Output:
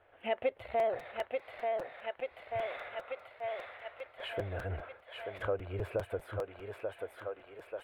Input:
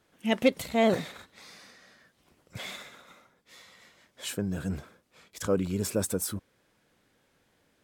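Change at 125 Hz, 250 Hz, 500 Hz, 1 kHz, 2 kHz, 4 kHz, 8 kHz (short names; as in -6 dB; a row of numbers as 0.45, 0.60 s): -6.5 dB, -18.5 dB, -3.0 dB, -0.5 dB, -4.0 dB, -10.0 dB, under -25 dB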